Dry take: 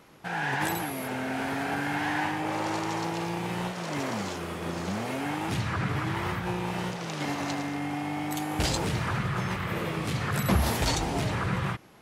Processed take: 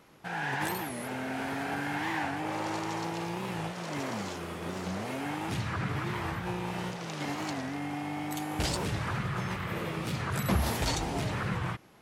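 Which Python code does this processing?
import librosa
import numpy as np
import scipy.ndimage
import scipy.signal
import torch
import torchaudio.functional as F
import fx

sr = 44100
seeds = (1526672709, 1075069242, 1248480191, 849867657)

y = fx.record_warp(x, sr, rpm=45.0, depth_cents=160.0)
y = y * 10.0 ** (-3.5 / 20.0)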